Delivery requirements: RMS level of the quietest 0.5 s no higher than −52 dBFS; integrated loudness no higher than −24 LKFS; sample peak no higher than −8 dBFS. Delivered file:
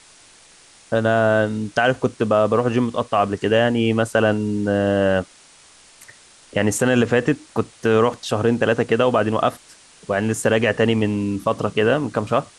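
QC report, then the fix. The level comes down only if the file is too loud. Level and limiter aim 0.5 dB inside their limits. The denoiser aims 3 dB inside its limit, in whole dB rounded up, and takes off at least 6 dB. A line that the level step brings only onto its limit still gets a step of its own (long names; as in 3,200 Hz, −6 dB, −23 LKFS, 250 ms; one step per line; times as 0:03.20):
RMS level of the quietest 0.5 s −49 dBFS: out of spec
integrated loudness −19.5 LKFS: out of spec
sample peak −5.5 dBFS: out of spec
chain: level −5 dB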